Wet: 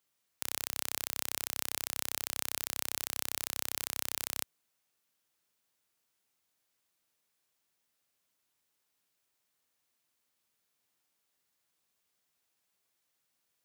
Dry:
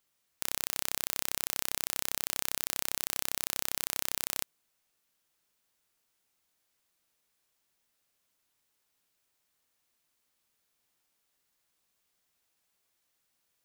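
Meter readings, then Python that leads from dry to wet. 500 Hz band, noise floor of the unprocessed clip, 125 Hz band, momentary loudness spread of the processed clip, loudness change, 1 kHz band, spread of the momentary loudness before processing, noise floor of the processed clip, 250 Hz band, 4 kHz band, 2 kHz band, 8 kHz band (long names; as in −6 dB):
−2.5 dB, −78 dBFS, −3.5 dB, 2 LU, −2.5 dB, −2.5 dB, 2 LU, −80 dBFS, −2.5 dB, −2.5 dB, −2.5 dB, −2.5 dB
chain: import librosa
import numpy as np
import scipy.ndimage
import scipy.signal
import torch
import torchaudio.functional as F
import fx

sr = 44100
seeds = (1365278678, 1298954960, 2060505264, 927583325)

y = scipy.signal.sosfilt(scipy.signal.butter(2, 71.0, 'highpass', fs=sr, output='sos'), x)
y = y * 10.0 ** (-2.5 / 20.0)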